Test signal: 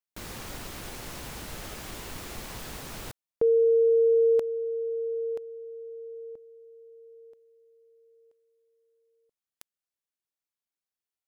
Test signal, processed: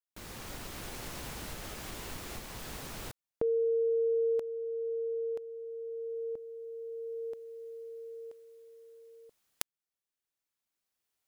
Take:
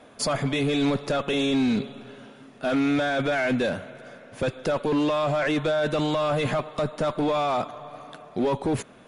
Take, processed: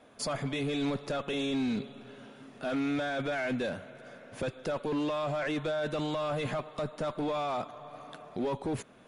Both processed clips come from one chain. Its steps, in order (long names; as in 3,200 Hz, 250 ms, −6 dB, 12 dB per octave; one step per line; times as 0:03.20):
camcorder AGC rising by 8.6 dB per second, up to +24 dB
level −8 dB